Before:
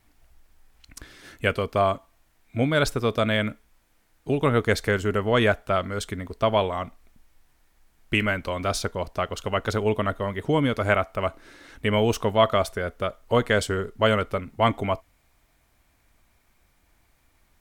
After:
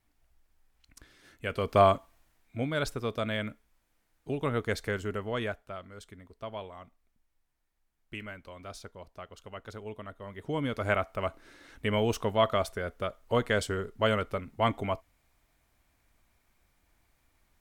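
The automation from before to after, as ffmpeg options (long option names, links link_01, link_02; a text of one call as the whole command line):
ffmpeg -i in.wav -af "volume=13dB,afade=type=in:start_time=1.48:duration=0.33:silence=0.237137,afade=type=out:start_time=1.81:duration=0.76:silence=0.316228,afade=type=out:start_time=5.02:duration=0.73:silence=0.354813,afade=type=in:start_time=10.16:duration=0.8:silence=0.251189" out.wav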